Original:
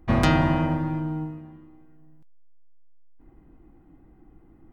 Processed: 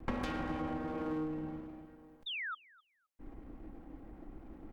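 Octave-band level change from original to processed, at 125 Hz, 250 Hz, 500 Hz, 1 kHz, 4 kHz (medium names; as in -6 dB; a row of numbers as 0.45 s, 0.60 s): -20.5 dB, -12.0 dB, -11.0 dB, -13.0 dB, -7.0 dB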